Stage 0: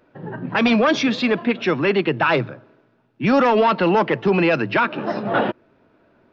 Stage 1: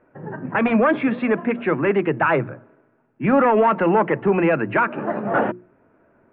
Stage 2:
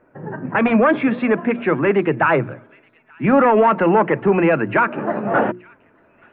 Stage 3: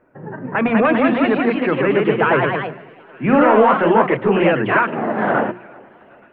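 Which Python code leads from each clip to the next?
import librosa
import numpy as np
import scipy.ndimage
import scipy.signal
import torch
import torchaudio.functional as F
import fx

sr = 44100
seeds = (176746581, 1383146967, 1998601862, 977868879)

y1 = scipy.signal.sosfilt(scipy.signal.cheby2(4, 50, 5400.0, 'lowpass', fs=sr, output='sos'), x)
y1 = fx.hum_notches(y1, sr, base_hz=60, count=6)
y2 = fx.echo_wet_highpass(y1, sr, ms=877, feedback_pct=31, hz=2200.0, wet_db=-21.5)
y2 = F.gain(torch.from_numpy(y2), 2.5).numpy()
y3 = fx.echo_tape(y2, sr, ms=385, feedback_pct=56, wet_db=-23, lp_hz=2000.0, drive_db=4.0, wow_cents=8)
y3 = fx.echo_pitch(y3, sr, ms=228, semitones=1, count=3, db_per_echo=-3.0)
y3 = F.gain(torch.from_numpy(y3), -1.5).numpy()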